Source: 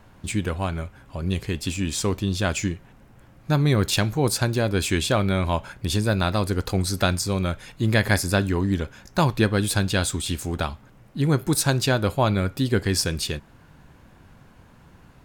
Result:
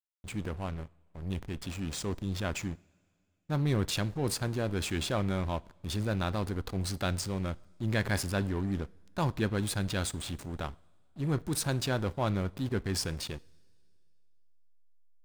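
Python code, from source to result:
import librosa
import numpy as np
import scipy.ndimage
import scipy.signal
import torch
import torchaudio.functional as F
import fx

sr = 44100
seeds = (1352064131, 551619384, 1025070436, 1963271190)

y = fx.backlash(x, sr, play_db=-25.5)
y = fx.transient(y, sr, attack_db=-4, sustain_db=3)
y = fx.rev_double_slope(y, sr, seeds[0], early_s=0.5, late_s=2.4, knee_db=-16, drr_db=20.0)
y = F.gain(torch.from_numpy(y), -8.0).numpy()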